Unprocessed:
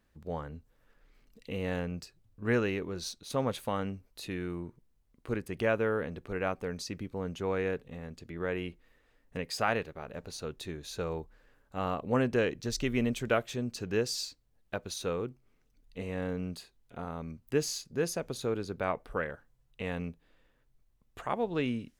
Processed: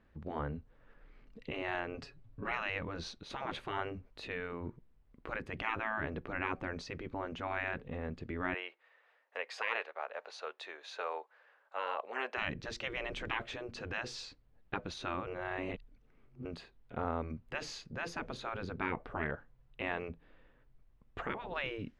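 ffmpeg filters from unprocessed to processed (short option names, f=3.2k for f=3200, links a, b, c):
-filter_complex "[0:a]asettb=1/sr,asplit=3[a][b][c];[a]atrim=end=1.944[d];[b]atrim=start=1.94:end=2.52,asetpts=PTS-STARTPTS,afade=t=in:d=0.004:c=qsin,afade=t=out:st=0.576:d=0.004:c=qsin,aecho=1:1:7.2:0.85,atrim=end_sample=25578[e];[c]atrim=start=2.516[f];[d][e]acrossfade=d=0.004:c1=hsin:c2=qsin[g];[g][f]acrossfade=d=0.004:c1=qsin:c2=hsin,asettb=1/sr,asplit=3[h][i][j];[h]atrim=end=8.544[k];[i]atrim=start=8.54:end=12.38,asetpts=PTS-STARTPTS,afade=t=in:d=0.004:c=qsin,afade=t=out:st=3.836:d=0.004:c=qsin,highpass=f=610:w=0.5412,highpass=f=610:w=1.3066[l];[j]atrim=start=12.376[m];[k][l]acrossfade=d=0.004:c1=hsin:c2=qsin[n];[n][m]acrossfade=d=0.004:c1=qsin:c2=hsin,asplit=3[o][p][q];[o]atrim=end=15.272[r];[p]atrim=start=15.268:end=16.452,asetpts=PTS-STARTPTS,areverse[s];[q]atrim=start=16.448[t];[r][s]acrossfade=d=0.004:c1=hsin:c2=hsin[u];[u][t]acrossfade=d=0.004:c1=hsin:c2=hsin,afftfilt=real='re*lt(hypot(re,im),0.0631)':imag='im*lt(hypot(re,im),0.0631)':win_size=1024:overlap=0.75,lowpass=2.5k,volume=5dB"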